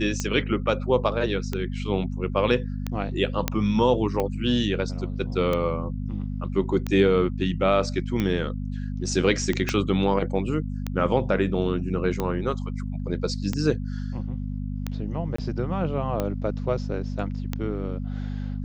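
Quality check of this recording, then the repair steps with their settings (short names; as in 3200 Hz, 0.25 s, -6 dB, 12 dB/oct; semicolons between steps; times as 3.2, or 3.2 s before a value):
hum 50 Hz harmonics 5 -30 dBFS
tick 45 rpm -13 dBFS
3.48 pop -7 dBFS
9.69 pop -10 dBFS
15.36–15.38 gap 24 ms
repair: de-click; de-hum 50 Hz, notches 5; interpolate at 15.36, 24 ms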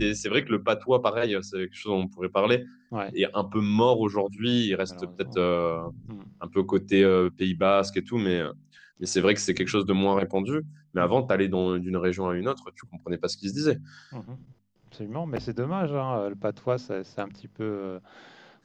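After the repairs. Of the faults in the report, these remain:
9.69 pop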